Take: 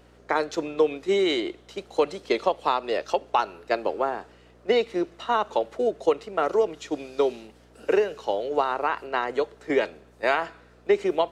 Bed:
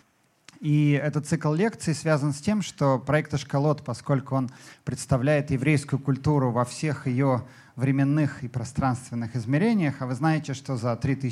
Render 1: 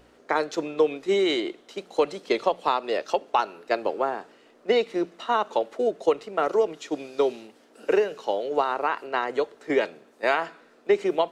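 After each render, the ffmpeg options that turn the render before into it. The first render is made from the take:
-af "bandreject=f=60:t=h:w=4,bandreject=f=120:t=h:w=4,bandreject=f=180:t=h:w=4"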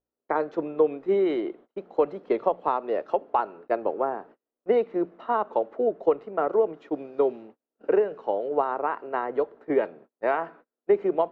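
-af "lowpass=1.2k,agate=range=-34dB:threshold=-47dB:ratio=16:detection=peak"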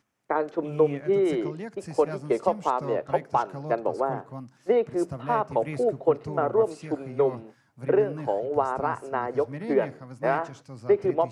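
-filter_complex "[1:a]volume=-13.5dB[a];[0:a][a]amix=inputs=2:normalize=0"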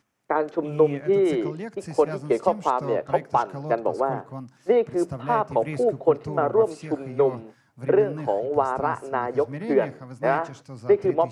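-af "volume=2.5dB"

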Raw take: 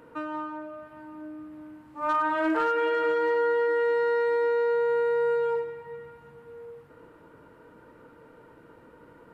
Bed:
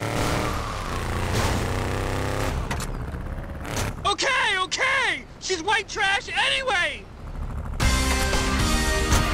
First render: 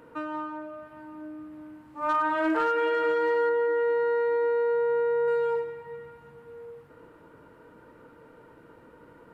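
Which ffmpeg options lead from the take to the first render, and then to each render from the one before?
-filter_complex "[0:a]asettb=1/sr,asplit=3[a][b][c];[a]atrim=end=3.494[d];[b]atrim=start=3.49:end=5.28,asetpts=PTS-STARTPTS,afade=t=in:d=0.004:c=qsin,afade=t=out:st=1.786:d=0.004:c=qsin,lowpass=f=1.6k:p=1[e];[c]atrim=start=5.276[f];[d][e]acrossfade=d=0.004:c1=hsin:c2=qsin[g];[g][f]acrossfade=d=0.004:c1=qsin:c2=hsin"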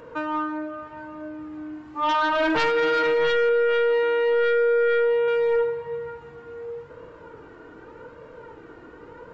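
-af "flanger=delay=1.8:depth=1:regen=28:speed=0.85:shape=sinusoidal,aresample=16000,aeval=exprs='0.126*sin(PI/2*2.51*val(0)/0.126)':c=same,aresample=44100"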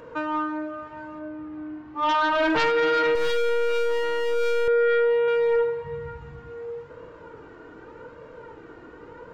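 -filter_complex "[0:a]asettb=1/sr,asplit=3[a][b][c];[a]atrim=end=1.194[d];[b]atrim=start=1.19:end=2.04,asetpts=PTS-STARTPTS,afade=t=in:d=0.004:c=qsin,afade=t=out:st=0.846:d=0.004:c=qsin,adynamicsmooth=sensitivity=2.5:basefreq=3.6k[e];[c]atrim=start=2.036[f];[d][e]acrossfade=d=0.004:c1=hsin:c2=qsin[g];[g][f]acrossfade=d=0.004:c1=qsin:c2=hsin,asettb=1/sr,asplit=3[h][i][j];[h]atrim=end=3.154[k];[i]atrim=start=3.15:end=4.68,asetpts=PTS-STARTPTS,afade=t=in:d=0.004:c=qsin,afade=t=out:st=1.526:d=0.004:c=qsin,aeval=exprs='clip(val(0),-1,0.0224)':c=same[l];[j]atrim=start=4.676[m];[k][l]acrossfade=d=0.004:c1=hsin:c2=qsin[n];[n][m]acrossfade=d=0.004:c1=qsin:c2=hsin,asplit=3[o][p][q];[o]afade=t=out:st=5.83:d=0.02[r];[p]asubboost=boost=5.5:cutoff=150,afade=t=in:st=5.83:d=0.02,afade=t=out:st=6.49:d=0.02[s];[q]afade=t=in:st=6.49:d=0.02[t];[r][s][t]amix=inputs=3:normalize=0"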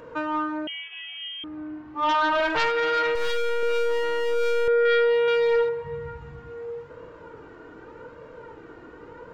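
-filter_complex "[0:a]asettb=1/sr,asplit=3[a][b][c];[a]atrim=end=0.674[d];[b]atrim=start=0.67:end=1.44,asetpts=PTS-STARTPTS,afade=t=in:d=0.004:c=qsin,afade=t=out:st=0.766:d=0.004:c=qsin,lowpass=f=3k:t=q:w=0.5098,lowpass=f=3k:t=q:w=0.6013,lowpass=f=3k:t=q:w=0.9,lowpass=f=3k:t=q:w=2.563,afreqshift=-3500[e];[c]atrim=start=1.436[f];[d][e]acrossfade=d=0.004:c1=hsin:c2=qsin[g];[g][f]acrossfade=d=0.004:c1=qsin:c2=hsin,asettb=1/sr,asplit=3[h][i][j];[h]atrim=end=2.404[k];[i]atrim=start=2.4:end=3.63,asetpts=PTS-STARTPTS,afade=t=in:d=0.004:c=qsin,afade=t=out:st=1.226:d=0.004:c=qsin,equalizer=f=240:t=o:w=1.1:g=-13.5[l];[j]atrim=start=3.626[m];[k][l]acrossfade=d=0.004:c1=hsin:c2=qsin[n];[n][m]acrossfade=d=0.004:c1=qsin:c2=hsin,asettb=1/sr,asplit=3[o][p][q];[o]atrim=end=4.854[r];[p]atrim=start=4.85:end=5.69,asetpts=PTS-STARTPTS,afade=t=in:d=0.004:c=qsin,afade=t=out:st=0.836:d=0.004:c=qsin,equalizer=f=4.4k:t=o:w=1.5:g=12[s];[q]atrim=start=5.686[t];[r][s]acrossfade=d=0.004:c1=hsin:c2=qsin[u];[u][t]acrossfade=d=0.004:c1=qsin:c2=hsin"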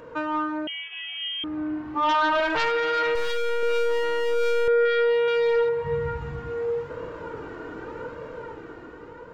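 -af "dynaudnorm=f=380:g=7:m=8dB,alimiter=limit=-17.5dB:level=0:latency=1:release=284"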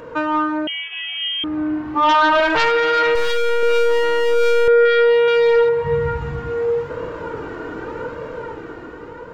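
-af "volume=7.5dB"

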